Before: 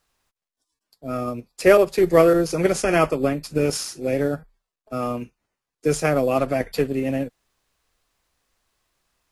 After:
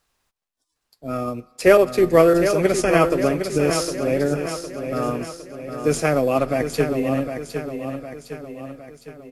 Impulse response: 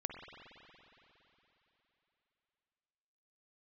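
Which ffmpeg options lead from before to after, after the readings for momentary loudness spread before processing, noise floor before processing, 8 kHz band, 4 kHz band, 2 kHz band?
15 LU, below −85 dBFS, +1.5 dB, +1.5 dB, +1.5 dB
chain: -filter_complex "[0:a]aecho=1:1:759|1518|2277|3036|3795|4554:0.398|0.203|0.104|0.0528|0.0269|0.0137,asplit=2[link_01][link_02];[1:a]atrim=start_sample=2205,asetrate=66150,aresample=44100[link_03];[link_02][link_03]afir=irnorm=-1:irlink=0,volume=-14dB[link_04];[link_01][link_04]amix=inputs=2:normalize=0"

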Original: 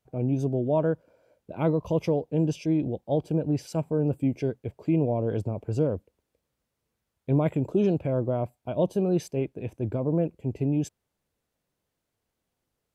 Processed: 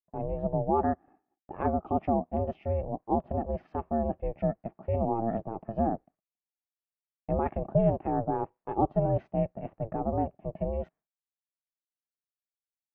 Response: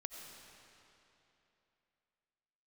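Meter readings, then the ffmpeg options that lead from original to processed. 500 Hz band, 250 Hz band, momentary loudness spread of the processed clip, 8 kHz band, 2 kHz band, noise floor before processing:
−3.0 dB, −5.5 dB, 9 LU, can't be measured, −4.5 dB, −83 dBFS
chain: -af "highpass=230,equalizer=frequency=400:width_type=q:width=4:gain=8,equalizer=frequency=560:width_type=q:width=4:gain=5,equalizer=frequency=900:width_type=q:width=4:gain=4,equalizer=frequency=1500:width_type=q:width=4:gain=5,lowpass=frequency=2100:width=0.5412,lowpass=frequency=2100:width=1.3066,aeval=exprs='val(0)*sin(2*PI*230*n/s)':channel_layout=same,agate=range=-33dB:threshold=-48dB:ratio=3:detection=peak,volume=-2.5dB"

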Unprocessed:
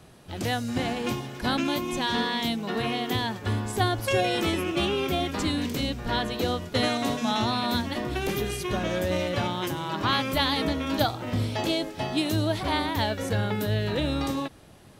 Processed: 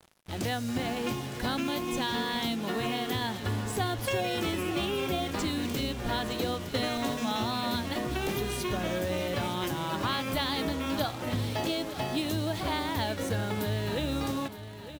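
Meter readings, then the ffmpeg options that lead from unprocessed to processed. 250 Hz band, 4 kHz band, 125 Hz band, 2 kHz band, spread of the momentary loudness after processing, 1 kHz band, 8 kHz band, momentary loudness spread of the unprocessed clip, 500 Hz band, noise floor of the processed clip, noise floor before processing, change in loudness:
−3.5 dB, −4.0 dB, −4.0 dB, −4.0 dB, 2 LU, −4.0 dB, −1.5 dB, 5 LU, −4.0 dB, −42 dBFS, −50 dBFS, −4.0 dB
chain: -af "acompressor=threshold=-29dB:ratio=2.5,acrusher=bits=6:mix=0:aa=0.5,aecho=1:1:913|1826|2739|3652:0.224|0.094|0.0395|0.0166"

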